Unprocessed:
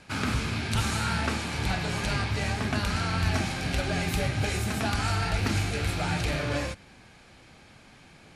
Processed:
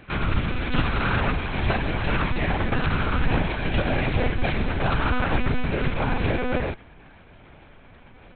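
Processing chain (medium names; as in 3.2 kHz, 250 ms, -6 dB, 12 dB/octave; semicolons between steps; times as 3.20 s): treble shelf 2.8 kHz -5.5 dB, from 5.47 s -11 dB; monotone LPC vocoder at 8 kHz 250 Hz; trim +6 dB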